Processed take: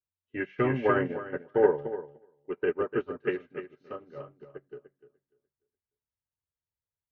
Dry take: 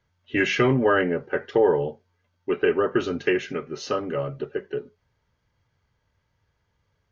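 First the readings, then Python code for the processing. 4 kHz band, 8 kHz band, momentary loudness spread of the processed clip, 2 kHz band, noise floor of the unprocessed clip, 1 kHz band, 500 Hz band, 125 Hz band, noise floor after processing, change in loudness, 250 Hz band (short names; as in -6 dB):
under -15 dB, n/a, 20 LU, -9.0 dB, -73 dBFS, -6.0 dB, -5.5 dB, -7.0 dB, under -85 dBFS, -5.0 dB, -7.5 dB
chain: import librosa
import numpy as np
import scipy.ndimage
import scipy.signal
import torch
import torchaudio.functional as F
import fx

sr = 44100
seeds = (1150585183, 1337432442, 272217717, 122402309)

y = scipy.signal.sosfilt(scipy.signal.butter(2, 2000.0, 'lowpass', fs=sr, output='sos'), x)
y = fx.echo_feedback(y, sr, ms=296, feedback_pct=31, wet_db=-5)
y = fx.upward_expand(y, sr, threshold_db=-34.0, expansion=2.5)
y = F.gain(torch.from_numpy(y), -1.0).numpy()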